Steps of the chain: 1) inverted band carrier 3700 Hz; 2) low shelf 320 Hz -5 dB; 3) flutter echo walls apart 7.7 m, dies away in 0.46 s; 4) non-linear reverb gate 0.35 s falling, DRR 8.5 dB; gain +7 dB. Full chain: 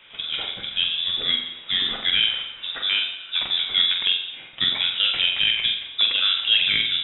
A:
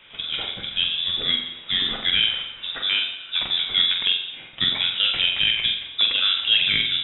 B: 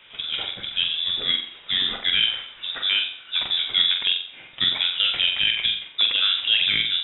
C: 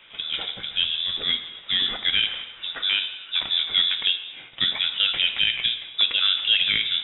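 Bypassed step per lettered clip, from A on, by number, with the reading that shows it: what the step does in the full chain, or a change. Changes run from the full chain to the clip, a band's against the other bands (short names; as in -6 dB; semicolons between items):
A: 2, 250 Hz band +3.0 dB; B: 4, echo-to-direct -2.5 dB to -4.5 dB; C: 3, echo-to-direct -2.5 dB to -8.5 dB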